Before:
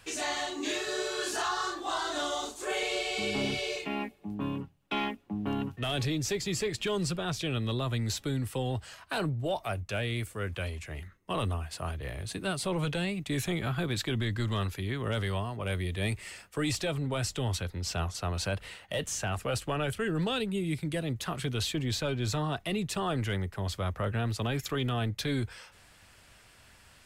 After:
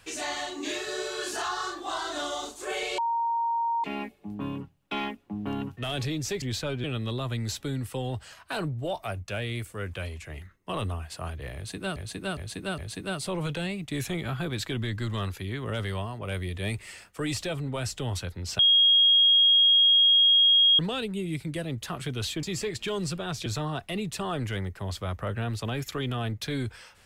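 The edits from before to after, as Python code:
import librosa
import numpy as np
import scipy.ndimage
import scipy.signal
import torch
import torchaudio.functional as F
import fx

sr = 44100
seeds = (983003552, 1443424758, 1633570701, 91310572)

y = fx.edit(x, sr, fx.bleep(start_s=2.98, length_s=0.86, hz=929.0, db=-24.0),
    fx.swap(start_s=6.42, length_s=1.03, other_s=21.81, other_length_s=0.42),
    fx.repeat(start_s=12.16, length_s=0.41, count=4),
    fx.bleep(start_s=17.97, length_s=2.2, hz=3270.0, db=-16.0), tone=tone)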